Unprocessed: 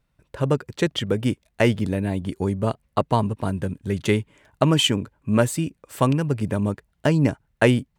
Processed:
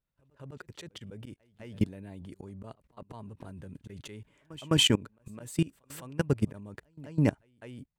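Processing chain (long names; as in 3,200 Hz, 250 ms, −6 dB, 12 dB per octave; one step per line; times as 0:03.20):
volume swells 203 ms
echo ahead of the sound 208 ms −22 dB
output level in coarse steps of 22 dB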